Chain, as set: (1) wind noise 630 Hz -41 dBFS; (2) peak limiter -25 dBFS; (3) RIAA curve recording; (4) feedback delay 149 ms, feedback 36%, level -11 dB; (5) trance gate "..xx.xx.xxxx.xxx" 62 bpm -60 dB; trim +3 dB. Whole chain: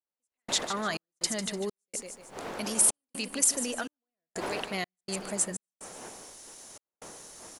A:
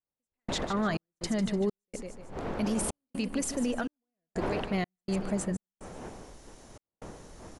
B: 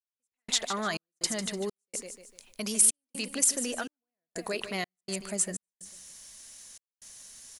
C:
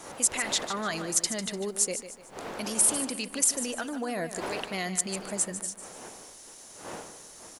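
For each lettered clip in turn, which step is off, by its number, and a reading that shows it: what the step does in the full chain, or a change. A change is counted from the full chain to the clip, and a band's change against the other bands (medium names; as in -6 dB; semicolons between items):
3, 8 kHz band -13.5 dB; 1, 1 kHz band -2.0 dB; 5, 4 kHz band -1.5 dB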